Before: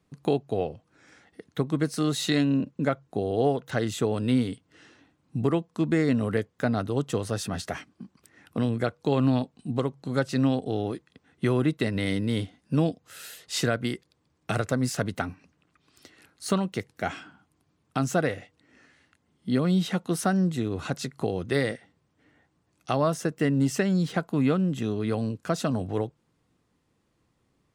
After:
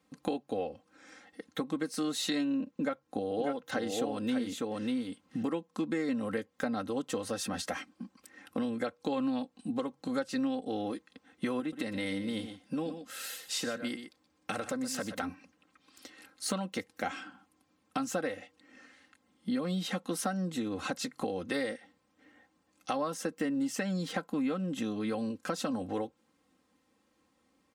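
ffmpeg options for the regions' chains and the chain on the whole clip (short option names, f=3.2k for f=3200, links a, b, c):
-filter_complex "[0:a]asettb=1/sr,asplit=3[a][b][c];[a]atrim=end=2.684[d];[b]atrim=start=2.68:end=5.43,asetpts=PTS-STARTPTS,afade=t=in:d=0.004:c=qsin,afade=t=out:st=2.746:d=0.004:c=qsin,bandreject=f=7.8k:w=20,aecho=1:1:595:0.631,atrim=end_sample=121275[e];[c]atrim=start=5.426[f];[d][e]acrossfade=d=0.004:c1=hsin:c2=qsin[g];[g][f]acrossfade=d=0.004:c1=qsin:c2=hsin,asettb=1/sr,asplit=3[h][i][j];[h]atrim=end=11.604[k];[i]atrim=start=11.6:end=15.23,asetpts=PTS-STARTPTS,afade=t=in:d=0.004:c=qsin,afade=t=out:st=3.626:d=0.004:c=qsin,acompressor=threshold=-35dB:ratio=1.5:attack=3.2:release=140:knee=1:detection=peak,aecho=1:1:123:0.251,atrim=end_sample=160083[l];[j]atrim=start=15.226[m];[k][l]acrossfade=d=0.004:c1=hsin:c2=qsin[n];[n][m]acrossfade=d=0.004:c1=qsin:c2=hsin,highpass=f=230:p=1,aecho=1:1:3.8:0.76,acompressor=threshold=-32dB:ratio=3"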